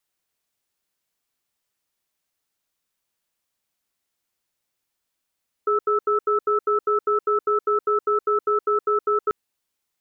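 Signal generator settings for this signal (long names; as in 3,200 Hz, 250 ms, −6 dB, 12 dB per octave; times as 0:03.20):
tone pair in a cadence 418 Hz, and 1,310 Hz, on 0.12 s, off 0.08 s, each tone −20 dBFS 3.64 s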